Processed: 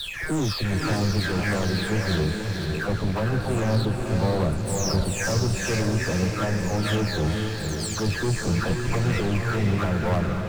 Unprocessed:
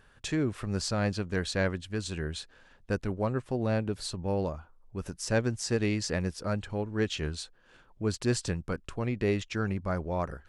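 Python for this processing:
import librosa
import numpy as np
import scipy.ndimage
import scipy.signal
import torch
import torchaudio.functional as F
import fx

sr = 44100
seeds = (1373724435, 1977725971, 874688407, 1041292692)

y = fx.spec_delay(x, sr, highs='early', ms=533)
y = scipy.signal.sosfilt(scipy.signal.butter(2, 7300.0, 'lowpass', fs=sr, output='sos'), y)
y = fx.peak_eq(y, sr, hz=1500.0, db=6.5, octaves=0.24)
y = fx.notch(y, sr, hz=1500.0, q=11.0)
y = fx.leveller(y, sr, passes=5)
y = fx.low_shelf(y, sr, hz=190.0, db=6.5)
y = fx.rider(y, sr, range_db=10, speed_s=0.5)
y = fx.echo_diffused(y, sr, ms=505, feedback_pct=50, wet_db=-3.5)
y = y * 10.0 ** (-8.0 / 20.0)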